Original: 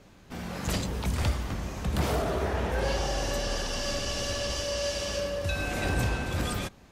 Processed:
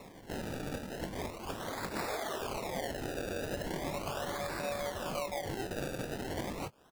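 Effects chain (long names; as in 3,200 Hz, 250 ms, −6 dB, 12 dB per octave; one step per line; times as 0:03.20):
meter weighting curve A
reverb reduction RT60 0.85 s
high-shelf EQ 6,000 Hz −9 dB
downward compressor 6 to 1, threshold −45 dBFS, peak gain reduction 14 dB
pitch-shifted copies added +4 semitones −6 dB
sample-and-hold swept by an LFO 28×, swing 100% 0.38 Hz
double-tracking delay 21 ms −12.5 dB
level +8.5 dB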